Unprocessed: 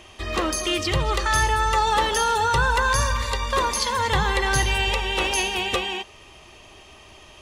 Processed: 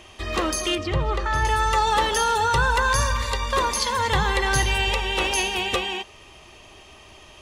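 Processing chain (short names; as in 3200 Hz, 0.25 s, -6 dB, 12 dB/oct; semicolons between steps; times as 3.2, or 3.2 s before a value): 0.75–1.45 LPF 1400 Hz 6 dB/oct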